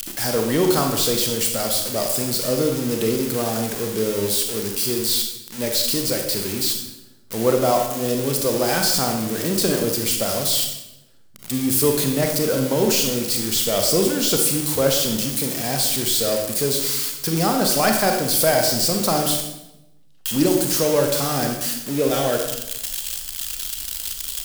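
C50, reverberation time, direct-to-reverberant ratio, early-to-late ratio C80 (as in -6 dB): 5.0 dB, 0.90 s, 3.0 dB, 7.5 dB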